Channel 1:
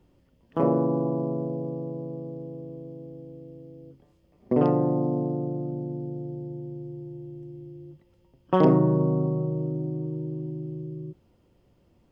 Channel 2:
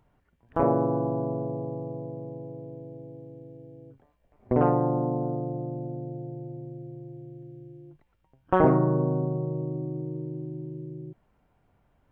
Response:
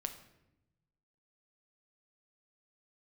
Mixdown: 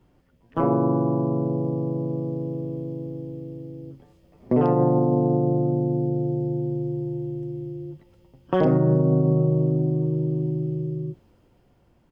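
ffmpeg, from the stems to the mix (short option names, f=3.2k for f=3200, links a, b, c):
-filter_complex "[0:a]dynaudnorm=f=420:g=7:m=10dB,volume=-0.5dB[a];[1:a]adelay=13,volume=0.5dB[b];[a][b]amix=inputs=2:normalize=0,alimiter=limit=-11dB:level=0:latency=1:release=110"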